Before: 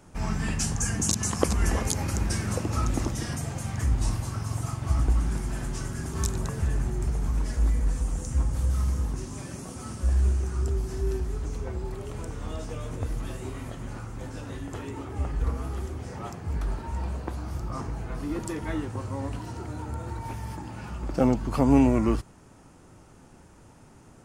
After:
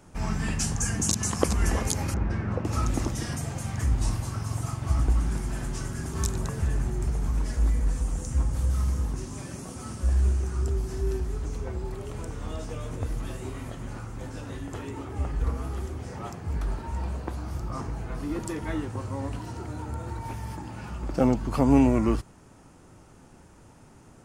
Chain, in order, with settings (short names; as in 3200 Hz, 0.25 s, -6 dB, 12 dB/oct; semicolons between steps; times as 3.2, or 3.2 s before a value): 2.14–2.65 LPF 1800 Hz 12 dB/oct